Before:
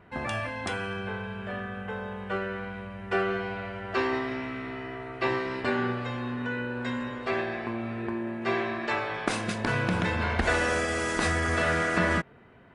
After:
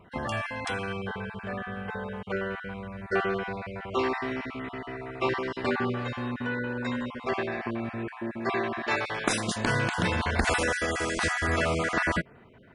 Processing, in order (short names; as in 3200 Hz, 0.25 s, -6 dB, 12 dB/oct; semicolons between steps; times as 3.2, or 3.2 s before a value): random spectral dropouts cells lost 23%; 8.9–10.63 high shelf 4700 Hz -> 6500 Hz +11.5 dB; gain +1 dB